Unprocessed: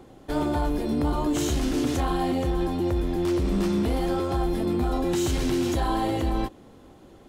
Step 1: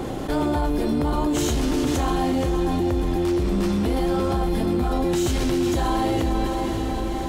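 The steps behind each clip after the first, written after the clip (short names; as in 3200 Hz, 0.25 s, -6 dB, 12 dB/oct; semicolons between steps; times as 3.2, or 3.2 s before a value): diffused feedback echo 0.572 s, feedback 43%, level -10.5 dB; fast leveller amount 70%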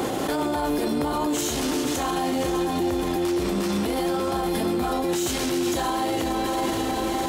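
HPF 350 Hz 6 dB/oct; high shelf 6600 Hz +6 dB; limiter -24.5 dBFS, peak gain reduction 11 dB; gain +7.5 dB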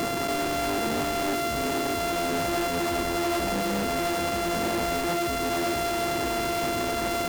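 sample sorter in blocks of 64 samples; in parallel at -4 dB: wrapped overs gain 20.5 dB; on the sum: gain -4.5 dB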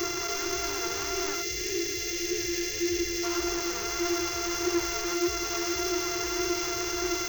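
spectral gain 1.42–3.23, 580–1600 Hz -16 dB; EQ curve 120 Hz 0 dB, 250 Hz -30 dB, 360 Hz +9 dB, 540 Hz -15 dB, 1000 Hz 0 dB, 2200 Hz +2 dB, 3800 Hz 0 dB, 6200 Hz +15 dB, 9400 Hz -21 dB, 16000 Hz +8 dB; flange 1.7 Hz, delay 2.5 ms, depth 2.1 ms, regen +43%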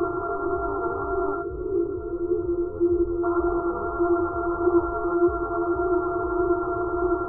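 brick-wall FIR low-pass 1400 Hz; gain +8 dB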